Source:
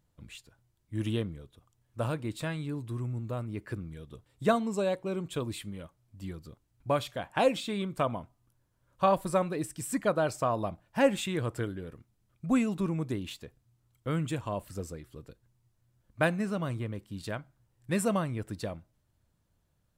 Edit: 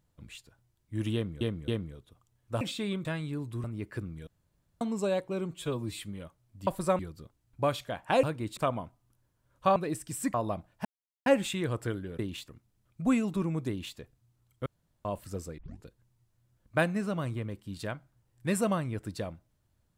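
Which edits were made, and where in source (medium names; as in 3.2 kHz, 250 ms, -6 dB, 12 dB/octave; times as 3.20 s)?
1.14–1.41 s: loop, 3 plays
2.07–2.41 s: swap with 7.50–7.94 s
3.00–3.39 s: delete
4.02–4.56 s: room tone
5.26–5.58 s: stretch 1.5×
9.13–9.45 s: move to 6.26 s
10.03–10.48 s: delete
10.99 s: insert silence 0.41 s
13.12–13.41 s: copy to 11.92 s
14.10–14.49 s: room tone
15.02 s: tape start 0.26 s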